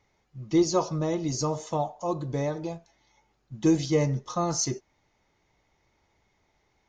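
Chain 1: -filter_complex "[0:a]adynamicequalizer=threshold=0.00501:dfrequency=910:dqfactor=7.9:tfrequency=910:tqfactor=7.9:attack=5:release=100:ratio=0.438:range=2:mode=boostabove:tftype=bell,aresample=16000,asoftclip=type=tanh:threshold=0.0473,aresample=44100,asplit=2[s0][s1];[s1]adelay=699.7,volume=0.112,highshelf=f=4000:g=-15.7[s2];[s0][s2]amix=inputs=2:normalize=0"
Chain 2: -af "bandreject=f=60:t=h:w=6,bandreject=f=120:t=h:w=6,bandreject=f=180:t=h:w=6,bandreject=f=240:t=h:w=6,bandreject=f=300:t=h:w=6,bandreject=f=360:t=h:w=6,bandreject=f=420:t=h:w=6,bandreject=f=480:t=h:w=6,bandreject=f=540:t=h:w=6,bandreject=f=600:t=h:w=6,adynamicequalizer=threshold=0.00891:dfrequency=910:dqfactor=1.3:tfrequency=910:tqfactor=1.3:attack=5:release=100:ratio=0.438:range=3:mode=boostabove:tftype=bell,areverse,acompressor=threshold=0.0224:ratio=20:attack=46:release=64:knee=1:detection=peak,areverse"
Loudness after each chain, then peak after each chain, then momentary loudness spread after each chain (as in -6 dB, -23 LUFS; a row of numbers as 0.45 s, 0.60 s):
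-33.0 LUFS, -33.5 LUFS; -22.0 dBFS, -18.5 dBFS; 20 LU, 9 LU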